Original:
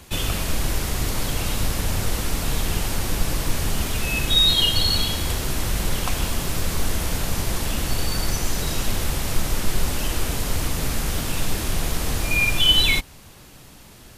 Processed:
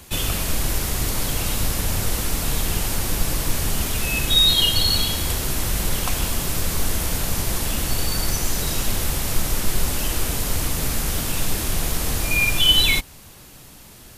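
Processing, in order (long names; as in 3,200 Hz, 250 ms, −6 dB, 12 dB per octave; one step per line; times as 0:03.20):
high-shelf EQ 7,700 Hz +7 dB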